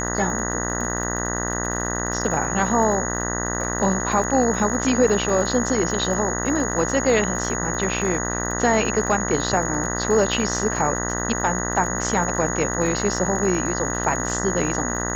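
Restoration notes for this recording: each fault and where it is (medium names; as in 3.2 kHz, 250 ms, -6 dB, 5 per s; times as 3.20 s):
buzz 60 Hz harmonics 33 -27 dBFS
crackle 55 per s -30 dBFS
whine 6.7 kHz -28 dBFS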